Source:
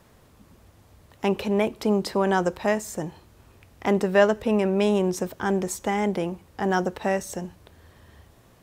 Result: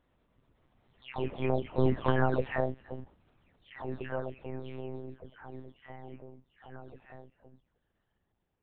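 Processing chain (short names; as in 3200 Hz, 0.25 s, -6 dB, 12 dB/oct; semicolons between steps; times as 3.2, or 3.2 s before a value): spectral delay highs early, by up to 0.424 s; Doppler pass-by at 2.04, 12 m/s, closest 5.2 m; monotone LPC vocoder at 8 kHz 130 Hz; gain -2 dB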